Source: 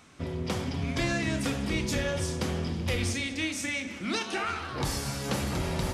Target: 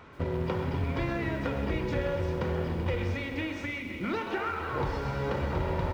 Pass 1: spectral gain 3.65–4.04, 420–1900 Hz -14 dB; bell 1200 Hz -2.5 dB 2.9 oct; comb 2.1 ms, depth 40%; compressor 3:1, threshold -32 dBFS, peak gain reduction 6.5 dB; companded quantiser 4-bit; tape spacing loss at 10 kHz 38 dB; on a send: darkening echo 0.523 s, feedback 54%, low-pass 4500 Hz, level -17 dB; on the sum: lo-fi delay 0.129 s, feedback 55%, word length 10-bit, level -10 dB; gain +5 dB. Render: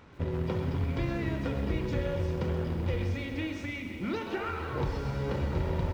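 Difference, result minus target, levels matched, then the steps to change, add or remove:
1000 Hz band -4.0 dB
change: bell 1200 Hz +5.5 dB 2.9 oct

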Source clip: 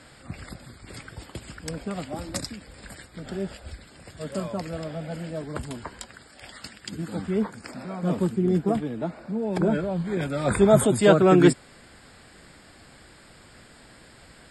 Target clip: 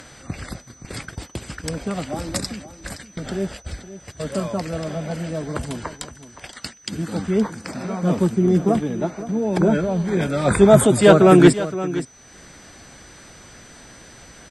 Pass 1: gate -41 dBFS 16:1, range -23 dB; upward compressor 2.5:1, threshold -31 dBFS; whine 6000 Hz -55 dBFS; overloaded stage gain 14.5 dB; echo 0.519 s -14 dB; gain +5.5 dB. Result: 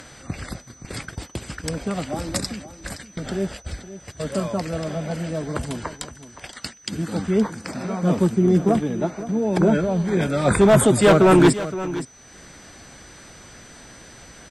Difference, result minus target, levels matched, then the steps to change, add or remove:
overloaded stage: distortion +16 dB
change: overloaded stage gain 7.5 dB

